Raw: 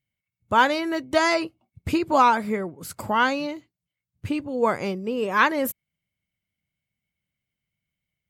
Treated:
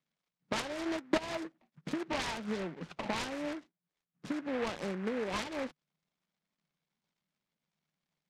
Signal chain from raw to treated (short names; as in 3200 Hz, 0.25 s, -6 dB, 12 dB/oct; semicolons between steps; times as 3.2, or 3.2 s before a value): self-modulated delay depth 0.41 ms; compressor 16:1, threshold -31 dBFS, peak gain reduction 18.5 dB; 0.84–1.31 transient shaper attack +8 dB, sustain -8 dB; Chebyshev band-pass 150–2400 Hz, order 5; noise-modulated delay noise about 1300 Hz, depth 0.12 ms